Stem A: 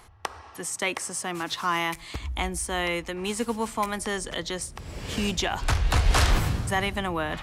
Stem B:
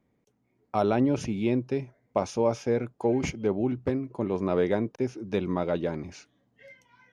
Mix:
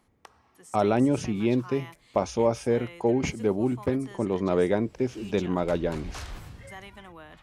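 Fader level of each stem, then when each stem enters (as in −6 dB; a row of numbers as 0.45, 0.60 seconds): −18.0, +1.5 decibels; 0.00, 0.00 seconds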